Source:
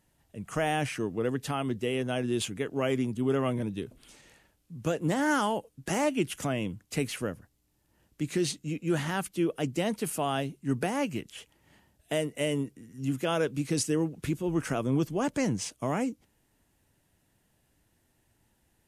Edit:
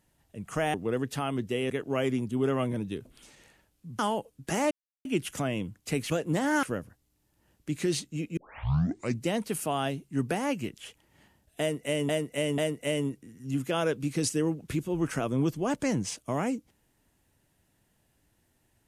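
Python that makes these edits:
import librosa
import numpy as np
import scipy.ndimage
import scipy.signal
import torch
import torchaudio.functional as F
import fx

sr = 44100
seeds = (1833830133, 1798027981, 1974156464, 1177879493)

y = fx.edit(x, sr, fx.cut(start_s=0.74, length_s=0.32),
    fx.cut(start_s=2.02, length_s=0.54),
    fx.move(start_s=4.85, length_s=0.53, to_s=7.15),
    fx.insert_silence(at_s=6.1, length_s=0.34),
    fx.tape_start(start_s=8.89, length_s=0.89),
    fx.repeat(start_s=12.12, length_s=0.49, count=3), tone=tone)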